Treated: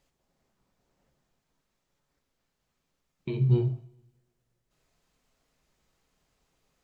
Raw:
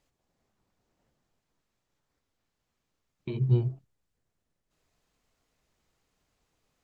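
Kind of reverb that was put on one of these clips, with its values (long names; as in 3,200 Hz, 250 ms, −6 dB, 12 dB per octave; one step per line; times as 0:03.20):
coupled-rooms reverb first 0.51 s, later 1.6 s, from −22 dB, DRR 7.5 dB
level +1.5 dB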